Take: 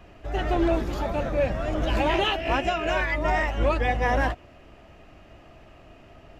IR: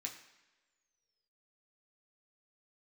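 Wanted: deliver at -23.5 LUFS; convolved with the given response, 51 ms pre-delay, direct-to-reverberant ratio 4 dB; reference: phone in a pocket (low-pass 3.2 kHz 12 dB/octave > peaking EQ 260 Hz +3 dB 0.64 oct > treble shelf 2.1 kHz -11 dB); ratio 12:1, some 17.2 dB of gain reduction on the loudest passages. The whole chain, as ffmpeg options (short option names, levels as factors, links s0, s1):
-filter_complex "[0:a]acompressor=threshold=0.0158:ratio=12,asplit=2[s0][s1];[1:a]atrim=start_sample=2205,adelay=51[s2];[s1][s2]afir=irnorm=-1:irlink=0,volume=0.794[s3];[s0][s3]amix=inputs=2:normalize=0,lowpass=3200,equalizer=f=260:t=o:w=0.64:g=3,highshelf=f=2100:g=-11,volume=7.94"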